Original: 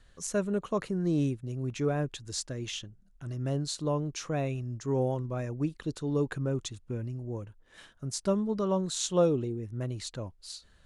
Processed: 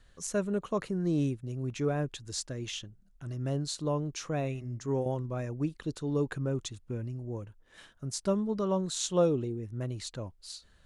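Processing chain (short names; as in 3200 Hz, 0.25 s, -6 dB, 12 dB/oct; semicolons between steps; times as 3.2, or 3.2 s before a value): 4.4–5.06 de-hum 127.7 Hz, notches 17; gain -1 dB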